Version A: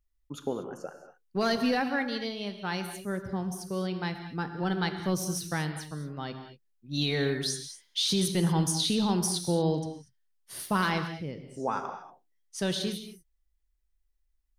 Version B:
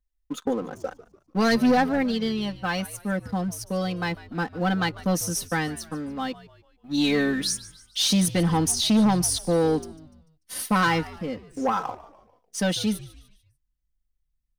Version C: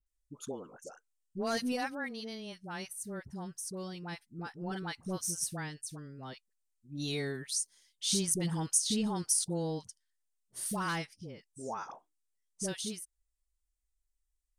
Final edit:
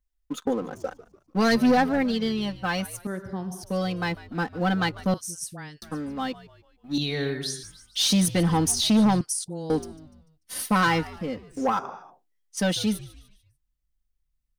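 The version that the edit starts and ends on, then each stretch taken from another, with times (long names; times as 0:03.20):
B
0:03.07–0:03.63: punch in from A
0:05.14–0:05.82: punch in from C
0:06.98–0:07.63: punch in from A
0:09.21–0:09.70: punch in from C
0:11.79–0:12.57: punch in from A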